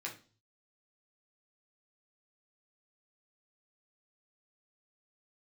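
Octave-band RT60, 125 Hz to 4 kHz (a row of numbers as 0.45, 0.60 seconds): 0.80, 0.45, 0.40, 0.35, 0.35, 0.40 seconds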